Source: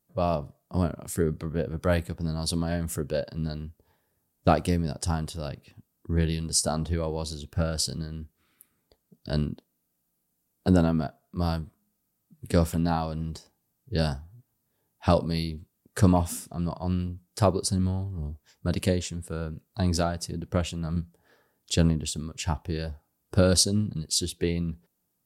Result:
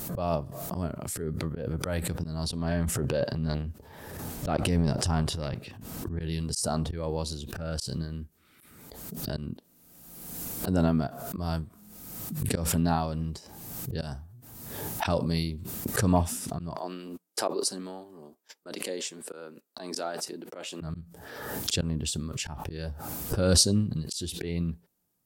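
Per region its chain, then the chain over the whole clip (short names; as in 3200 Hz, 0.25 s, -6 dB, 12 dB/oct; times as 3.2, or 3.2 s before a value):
2.43–6.2 transient shaper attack -3 dB, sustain +11 dB + high shelf 6900 Hz -9.5 dB
16.76–20.81 HPF 290 Hz 24 dB/oct + gate -56 dBFS, range -45 dB
whole clip: auto swell 0.196 s; backwards sustainer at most 38 dB/s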